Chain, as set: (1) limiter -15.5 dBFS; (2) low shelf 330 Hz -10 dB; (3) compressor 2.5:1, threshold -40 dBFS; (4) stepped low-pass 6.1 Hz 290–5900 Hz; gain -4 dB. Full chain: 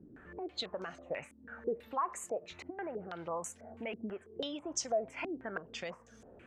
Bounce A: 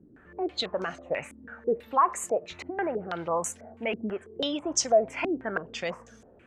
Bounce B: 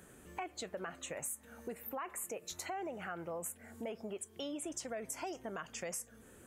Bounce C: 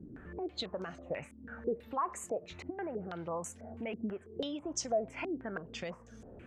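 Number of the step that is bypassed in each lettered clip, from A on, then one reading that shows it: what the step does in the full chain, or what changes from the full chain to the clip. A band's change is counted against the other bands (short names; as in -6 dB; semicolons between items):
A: 3, mean gain reduction 7.5 dB; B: 4, 8 kHz band +5.0 dB; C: 2, 125 Hz band +6.5 dB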